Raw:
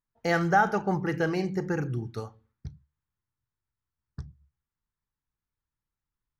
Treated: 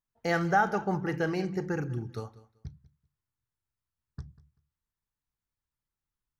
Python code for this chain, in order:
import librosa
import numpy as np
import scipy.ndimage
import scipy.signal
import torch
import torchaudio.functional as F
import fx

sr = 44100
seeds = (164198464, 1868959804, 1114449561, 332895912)

y = fx.echo_feedback(x, sr, ms=193, feedback_pct=20, wet_db=-19)
y = y * librosa.db_to_amplitude(-2.5)